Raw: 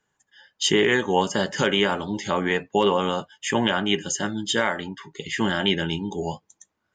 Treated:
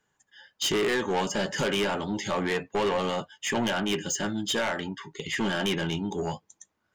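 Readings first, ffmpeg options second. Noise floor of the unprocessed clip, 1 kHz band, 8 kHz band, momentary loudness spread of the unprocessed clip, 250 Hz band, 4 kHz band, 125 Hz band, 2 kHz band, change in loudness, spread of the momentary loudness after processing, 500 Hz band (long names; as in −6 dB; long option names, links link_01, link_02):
−77 dBFS, −5.0 dB, −2.5 dB, 11 LU, −4.5 dB, −5.5 dB, −4.0 dB, −5.0 dB, −5.0 dB, 7 LU, −4.5 dB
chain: -af "asoftclip=type=tanh:threshold=-22dB"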